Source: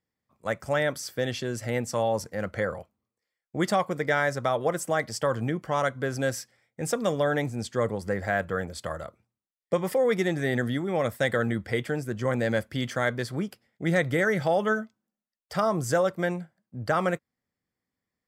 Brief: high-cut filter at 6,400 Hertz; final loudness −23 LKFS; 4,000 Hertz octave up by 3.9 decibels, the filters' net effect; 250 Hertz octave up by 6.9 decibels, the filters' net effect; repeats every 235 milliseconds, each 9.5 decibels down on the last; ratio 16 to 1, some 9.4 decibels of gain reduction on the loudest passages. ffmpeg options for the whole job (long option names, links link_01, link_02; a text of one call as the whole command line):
ffmpeg -i in.wav -af "lowpass=6400,equalizer=frequency=250:width_type=o:gain=9,equalizer=frequency=4000:width_type=o:gain=5.5,acompressor=threshold=-26dB:ratio=16,aecho=1:1:235|470|705|940:0.335|0.111|0.0365|0.012,volume=9dB" out.wav